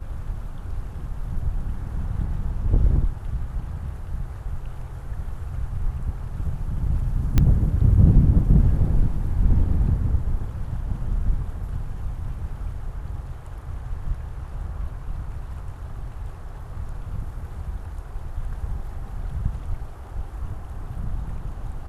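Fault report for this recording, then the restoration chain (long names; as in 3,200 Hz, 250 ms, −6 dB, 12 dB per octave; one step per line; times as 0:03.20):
0:07.38: click −6 dBFS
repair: click removal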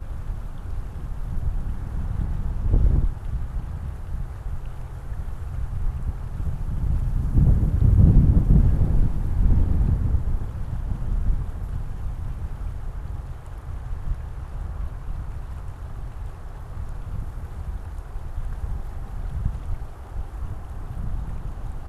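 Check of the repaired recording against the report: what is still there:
none of them is left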